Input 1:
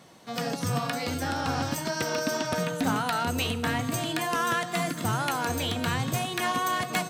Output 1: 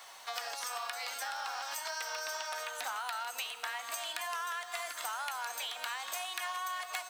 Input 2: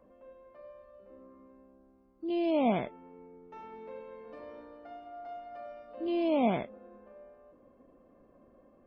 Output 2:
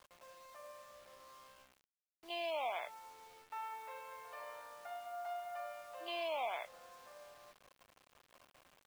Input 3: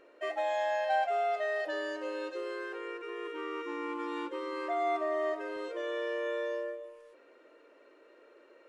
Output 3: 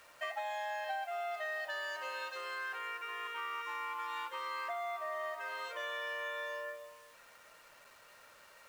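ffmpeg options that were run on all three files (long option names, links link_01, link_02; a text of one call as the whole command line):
ffmpeg -i in.wav -af "highpass=frequency=780:width=0.5412,highpass=frequency=780:width=1.3066,acompressor=threshold=-42dB:ratio=6,acrusher=bits=10:mix=0:aa=0.000001,volume=5.5dB" out.wav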